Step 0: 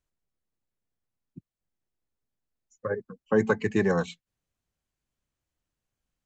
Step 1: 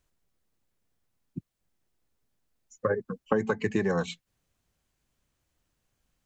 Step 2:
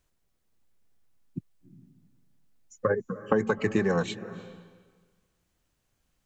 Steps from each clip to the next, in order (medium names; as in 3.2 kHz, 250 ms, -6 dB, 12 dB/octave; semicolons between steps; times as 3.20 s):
compression 12:1, threshold -31 dBFS, peak gain reduction 15 dB; trim +8.5 dB
on a send at -15 dB: tone controls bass +5 dB, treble -5 dB + reverberation RT60 1.5 s, pre-delay 238 ms; on the sum: trim +1.5 dB